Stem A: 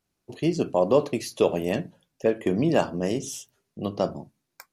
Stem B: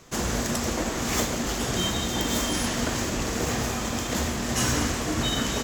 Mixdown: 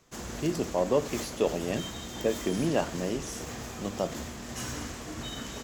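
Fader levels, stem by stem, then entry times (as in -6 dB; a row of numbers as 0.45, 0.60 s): -5.5, -12.0 dB; 0.00, 0.00 s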